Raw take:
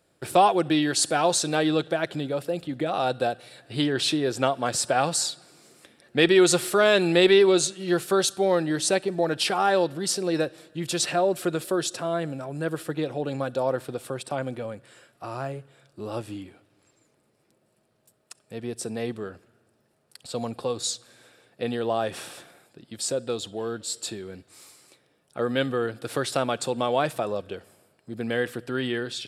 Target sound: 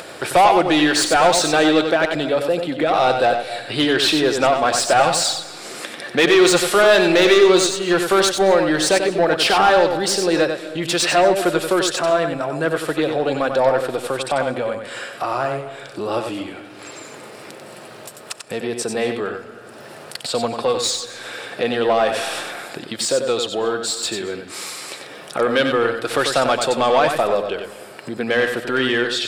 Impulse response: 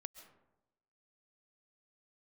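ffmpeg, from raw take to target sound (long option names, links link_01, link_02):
-filter_complex "[0:a]acompressor=mode=upward:threshold=-29dB:ratio=2.5,asplit=2[link_01][link_02];[link_02]highpass=frequency=720:poles=1,volume=20dB,asoftclip=type=tanh:threshold=-5dB[link_03];[link_01][link_03]amix=inputs=2:normalize=0,lowpass=frequency=3500:poles=1,volume=-6dB,asplit=2[link_04][link_05];[1:a]atrim=start_sample=2205,adelay=93[link_06];[link_05][link_06]afir=irnorm=-1:irlink=0,volume=-1dB[link_07];[link_04][link_07]amix=inputs=2:normalize=0"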